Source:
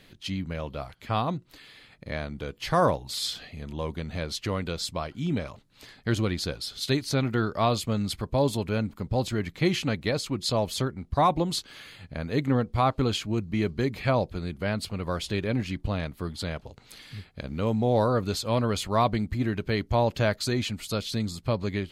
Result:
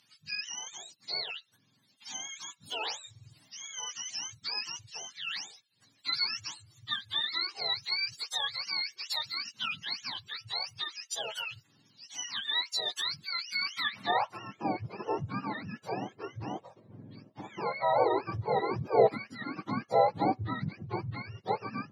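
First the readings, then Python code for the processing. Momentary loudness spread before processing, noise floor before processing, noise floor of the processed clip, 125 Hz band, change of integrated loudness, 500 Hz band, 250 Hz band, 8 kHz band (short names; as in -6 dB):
12 LU, -57 dBFS, -69 dBFS, -14.5 dB, -5.0 dB, -5.5 dB, -12.5 dB, -2.0 dB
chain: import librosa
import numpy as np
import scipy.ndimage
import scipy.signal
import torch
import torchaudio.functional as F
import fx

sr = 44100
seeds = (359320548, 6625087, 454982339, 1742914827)

y = fx.octave_mirror(x, sr, pivot_hz=690.0)
y = fx.filter_sweep_bandpass(y, sr, from_hz=5200.0, to_hz=500.0, start_s=13.6, end_s=14.5, q=1.3)
y = y * 10.0 ** (4.5 / 20.0)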